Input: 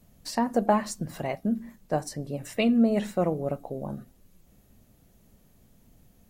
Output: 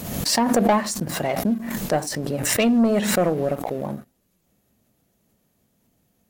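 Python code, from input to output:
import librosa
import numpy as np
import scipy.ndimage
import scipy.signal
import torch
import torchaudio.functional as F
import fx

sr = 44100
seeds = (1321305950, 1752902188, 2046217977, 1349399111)

y = fx.highpass(x, sr, hz=180.0, slope=6)
y = fx.leveller(y, sr, passes=2)
y = fx.pre_swell(y, sr, db_per_s=43.0)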